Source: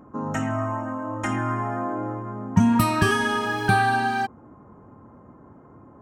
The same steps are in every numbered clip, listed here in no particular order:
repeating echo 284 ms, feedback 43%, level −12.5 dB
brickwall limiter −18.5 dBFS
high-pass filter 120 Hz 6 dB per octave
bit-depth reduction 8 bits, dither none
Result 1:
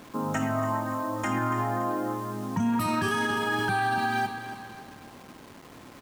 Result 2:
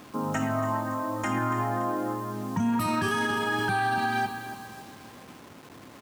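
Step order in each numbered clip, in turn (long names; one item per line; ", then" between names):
high-pass filter, then bit-depth reduction, then repeating echo, then brickwall limiter
repeating echo, then bit-depth reduction, then high-pass filter, then brickwall limiter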